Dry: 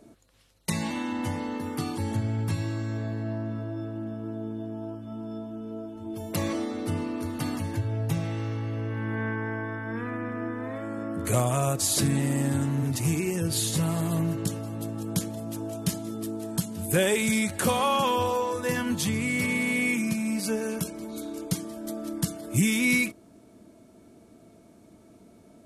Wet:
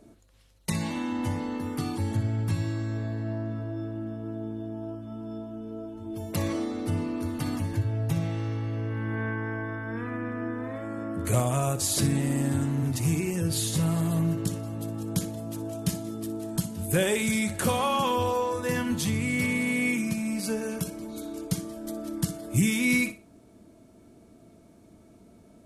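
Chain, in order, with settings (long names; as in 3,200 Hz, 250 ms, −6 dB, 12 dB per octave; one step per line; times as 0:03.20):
low-shelf EQ 93 Hz +8.5 dB
flutter between parallel walls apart 10.4 metres, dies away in 0.28 s
level −2 dB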